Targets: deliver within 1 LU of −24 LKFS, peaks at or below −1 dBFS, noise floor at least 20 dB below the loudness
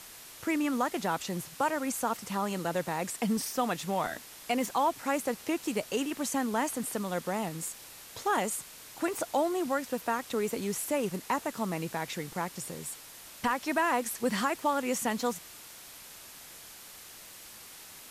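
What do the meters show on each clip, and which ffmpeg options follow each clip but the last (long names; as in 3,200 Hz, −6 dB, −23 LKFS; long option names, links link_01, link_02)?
background noise floor −49 dBFS; target noise floor −52 dBFS; integrated loudness −32.0 LKFS; sample peak −16.5 dBFS; target loudness −24.0 LKFS
→ -af "afftdn=noise_reduction=6:noise_floor=-49"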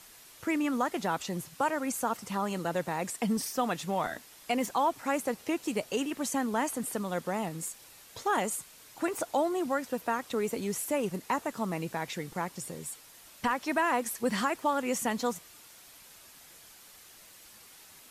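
background noise floor −54 dBFS; integrated loudness −32.0 LKFS; sample peak −16.5 dBFS; target loudness −24.0 LKFS
→ -af "volume=8dB"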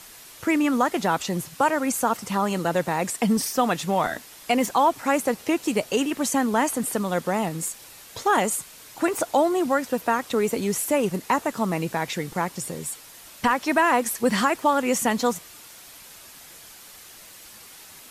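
integrated loudness −24.0 LKFS; sample peak −8.5 dBFS; background noise floor −46 dBFS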